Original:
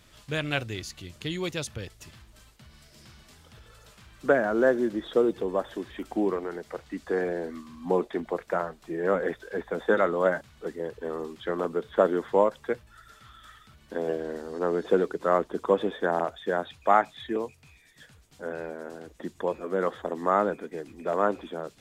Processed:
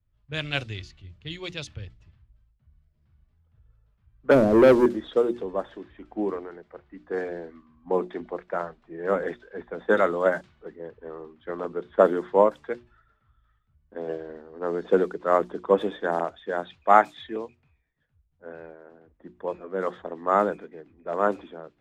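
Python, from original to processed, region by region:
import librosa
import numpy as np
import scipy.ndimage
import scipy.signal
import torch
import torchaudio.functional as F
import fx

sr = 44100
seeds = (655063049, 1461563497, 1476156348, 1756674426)

y = fx.chain(x, sr, fx.cheby2_lowpass(hz=3100.0, order=4, stop_db=80),
    fx.leveller(passes=3), at=(4.31, 4.86))
y = fx.hum_notches(y, sr, base_hz=60, count=6)
y = fx.env_lowpass(y, sr, base_hz=1400.0, full_db=-19.5)
y = fx.band_widen(y, sr, depth_pct=70)
y = y * librosa.db_to_amplitude(-1.0)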